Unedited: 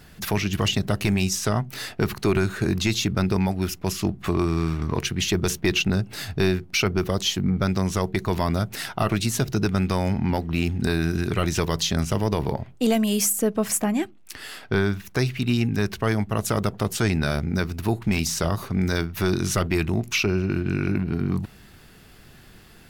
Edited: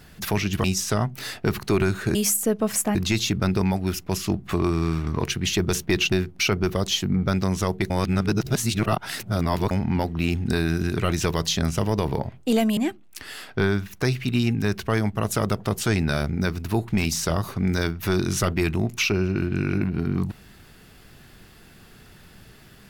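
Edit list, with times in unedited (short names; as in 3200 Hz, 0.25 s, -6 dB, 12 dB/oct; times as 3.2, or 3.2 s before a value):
0.64–1.19 cut
5.87–6.46 cut
8.24–10.05 reverse
13.11–13.91 move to 2.7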